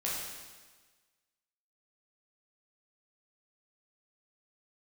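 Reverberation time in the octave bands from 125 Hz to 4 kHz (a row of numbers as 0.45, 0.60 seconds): 1.3, 1.4, 1.4, 1.4, 1.4, 1.4 seconds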